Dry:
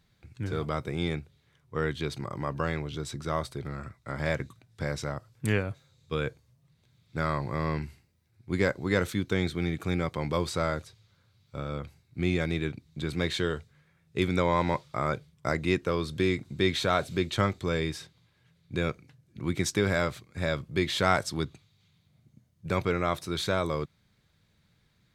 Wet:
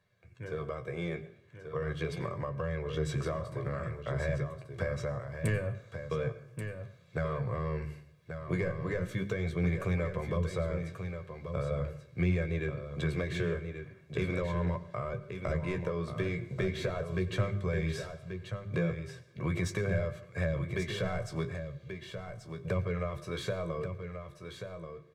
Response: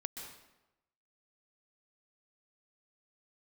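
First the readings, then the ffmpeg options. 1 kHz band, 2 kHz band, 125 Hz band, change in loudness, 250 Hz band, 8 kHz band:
-9.5 dB, -6.0 dB, -0.5 dB, -4.5 dB, -5.0 dB, -9.5 dB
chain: -filter_complex "[0:a]asplit=2[s0][s1];[s1]highpass=f=720:p=1,volume=7.08,asoftclip=type=tanh:threshold=0.422[s2];[s0][s2]amix=inputs=2:normalize=0,lowpass=f=1100:p=1,volume=0.501,bandreject=f=50:t=h:w=6,bandreject=f=100:t=h:w=6,bandreject=f=150:t=h:w=6,bandreject=f=200:t=h:w=6,bandreject=f=250:t=h:w=6,bandreject=f=300:t=h:w=6,bandreject=f=350:t=h:w=6,bandreject=f=400:t=h:w=6,dynaudnorm=f=440:g=9:m=3.76,flanger=delay=10:depth=7.7:regen=34:speed=0.4:shape=sinusoidal,bass=f=250:g=-5,treble=f=4000:g=2,aecho=1:1:1.8:0.64,acrossover=split=180[s3][s4];[s4]acompressor=threshold=0.0355:ratio=10[s5];[s3][s5]amix=inputs=2:normalize=0,equalizer=f=125:t=o:w=1:g=8,equalizer=f=1000:t=o:w=1:g=-5,equalizer=f=4000:t=o:w=1:g=-7,aecho=1:1:1134:0.398,asplit=2[s6][s7];[1:a]atrim=start_sample=2205,asetrate=61740,aresample=44100[s8];[s7][s8]afir=irnorm=-1:irlink=0,volume=0.562[s9];[s6][s9]amix=inputs=2:normalize=0,volume=0.531"

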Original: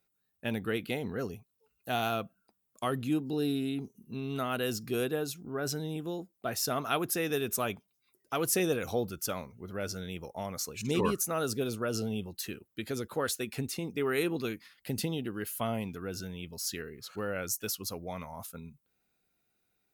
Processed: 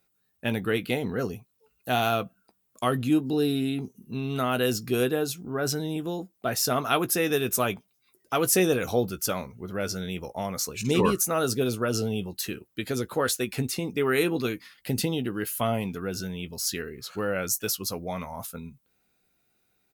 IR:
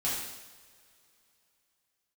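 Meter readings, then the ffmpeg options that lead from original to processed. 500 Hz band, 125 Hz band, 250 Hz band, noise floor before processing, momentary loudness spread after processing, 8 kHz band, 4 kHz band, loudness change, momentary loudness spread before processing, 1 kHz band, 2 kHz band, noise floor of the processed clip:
+6.5 dB, +6.5 dB, +6.0 dB, -79 dBFS, 11 LU, +6.5 dB, +6.5 dB, +6.5 dB, 11 LU, +6.5 dB, +6.0 dB, -72 dBFS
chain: -filter_complex "[0:a]asplit=2[s0][s1];[s1]adelay=16,volume=0.251[s2];[s0][s2]amix=inputs=2:normalize=0,volume=2"

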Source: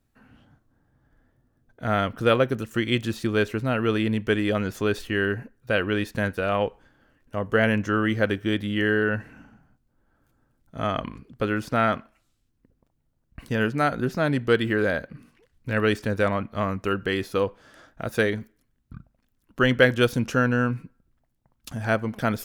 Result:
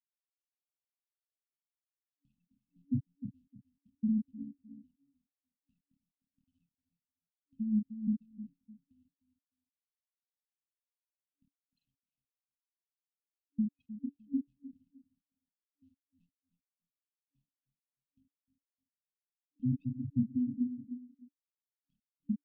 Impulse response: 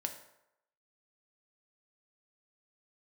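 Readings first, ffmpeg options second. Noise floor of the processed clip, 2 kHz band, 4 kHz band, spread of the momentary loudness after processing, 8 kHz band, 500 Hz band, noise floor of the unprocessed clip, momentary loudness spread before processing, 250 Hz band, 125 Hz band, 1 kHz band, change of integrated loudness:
under -85 dBFS, under -40 dB, under -40 dB, 18 LU, under -30 dB, under -40 dB, -71 dBFS, 9 LU, -10.5 dB, -15.5 dB, under -40 dB, -11.5 dB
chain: -filter_complex "[0:a]asplit=2[s0][s1];[1:a]atrim=start_sample=2205,afade=t=out:st=0.14:d=0.01,atrim=end_sample=6615[s2];[s1][s2]afir=irnorm=-1:irlink=0,volume=0.316[s3];[s0][s3]amix=inputs=2:normalize=0,afftfilt=real='re*gte(hypot(re,im),0.891)':imag='im*gte(hypot(re,im),0.891)':win_size=1024:overlap=0.75,asplit=2[s4][s5];[s5]adelay=29,volume=0.562[s6];[s4][s6]amix=inputs=2:normalize=0,aecho=1:1:305|610:0.178|0.0356,acompressor=threshold=0.0158:ratio=2,afftfilt=real='re*(1-between(b*sr/4096,290,2500))':imag='im*(1-between(b*sr/4096,290,2500))':win_size=4096:overlap=0.75,dynaudnorm=f=240:g=7:m=1.58"

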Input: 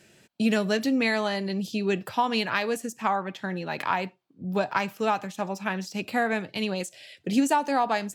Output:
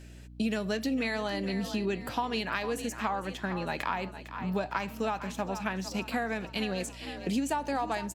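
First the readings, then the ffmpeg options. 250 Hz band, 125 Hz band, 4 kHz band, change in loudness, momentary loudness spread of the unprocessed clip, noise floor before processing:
-5.0 dB, -2.5 dB, -4.5 dB, -5.5 dB, 9 LU, -61 dBFS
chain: -filter_complex "[0:a]asplit=6[s0][s1][s2][s3][s4][s5];[s1]adelay=454,afreqshift=37,volume=0.188[s6];[s2]adelay=908,afreqshift=74,volume=0.0923[s7];[s3]adelay=1362,afreqshift=111,volume=0.0452[s8];[s4]adelay=1816,afreqshift=148,volume=0.0221[s9];[s5]adelay=2270,afreqshift=185,volume=0.0108[s10];[s0][s6][s7][s8][s9][s10]amix=inputs=6:normalize=0,acompressor=threshold=0.0398:ratio=4,aeval=exprs='val(0)+0.00447*(sin(2*PI*60*n/s)+sin(2*PI*2*60*n/s)/2+sin(2*PI*3*60*n/s)/3+sin(2*PI*4*60*n/s)/4+sin(2*PI*5*60*n/s)/5)':c=same"

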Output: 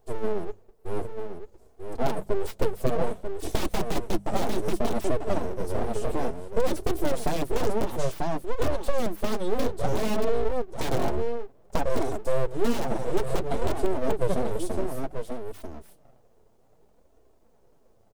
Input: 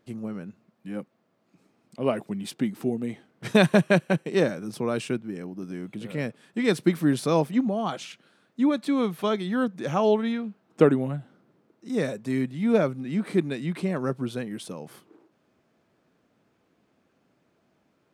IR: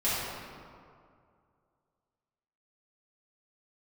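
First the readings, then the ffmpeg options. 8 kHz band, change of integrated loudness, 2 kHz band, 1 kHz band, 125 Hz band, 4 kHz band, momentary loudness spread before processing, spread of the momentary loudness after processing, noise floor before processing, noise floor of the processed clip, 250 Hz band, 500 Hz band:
+3.0 dB, -3.5 dB, -6.5 dB, +1.5 dB, -3.5 dB, -2.5 dB, 16 LU, 9 LU, -70 dBFS, -59 dBFS, -7.0 dB, -1.0 dB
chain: -filter_complex "[0:a]highpass=48,lowshelf=f=480:g=3.5,aecho=1:1:4.5:0.54,asplit=2[s0][s1];[s1]aecho=0:1:941:0.422[s2];[s0][s2]amix=inputs=2:normalize=0,crystalizer=i=1.5:c=0,aeval=exprs='(mod(4.22*val(0)+1,2)-1)/4.22':c=same,acompressor=threshold=0.0708:ratio=3,firequalizer=gain_entry='entry(390,0);entry(1200,-28);entry(2800,-15);entry(6700,-8)':delay=0.05:min_phase=1,aeval=exprs='abs(val(0))':c=same,flanger=delay=2.7:depth=6.4:regen=-33:speed=0.58:shape=sinusoidal,bandreject=f=50:t=h:w=6,bandreject=f=100:t=h:w=6,bandreject=f=150:t=h:w=6,bandreject=f=200:t=h:w=6,acrossover=split=5200[s3][s4];[s4]acompressor=threshold=0.00447:ratio=4:attack=1:release=60[s5];[s3][s5]amix=inputs=2:normalize=0,volume=2.82"

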